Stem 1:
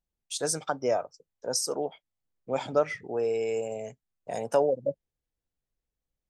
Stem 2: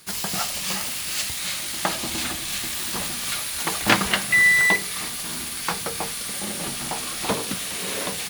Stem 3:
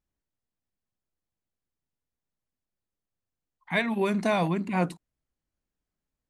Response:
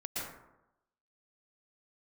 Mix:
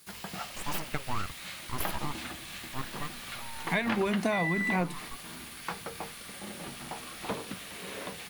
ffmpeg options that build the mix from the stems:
-filter_complex "[0:a]afwtdn=0.0112,aeval=exprs='abs(val(0))':c=same,adelay=250,volume=-1.5dB,afade=t=out:st=2.61:d=0.44:silence=0.237137[a];[1:a]highshelf=f=9.6k:g=6,acrossover=split=3400[b][c];[c]acompressor=threshold=-37dB:ratio=4:attack=1:release=60[d];[b][d]amix=inputs=2:normalize=0,volume=-9.5dB[e];[2:a]volume=3dB[f];[a][e][f]amix=inputs=3:normalize=0,acompressor=threshold=-25dB:ratio=6"

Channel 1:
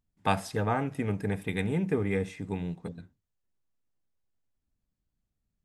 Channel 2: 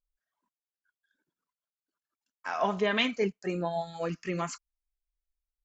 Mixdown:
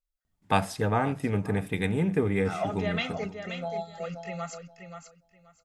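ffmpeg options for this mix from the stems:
-filter_complex "[0:a]adelay=250,volume=2.5dB,asplit=2[a][b];[b]volume=-18dB[c];[1:a]aecho=1:1:1.5:0.9,volume=-6dB,asplit=2[d][e];[e]volume=-8dB[f];[c][f]amix=inputs=2:normalize=0,aecho=0:1:529|1058|1587:1|0.19|0.0361[g];[a][d][g]amix=inputs=3:normalize=0"

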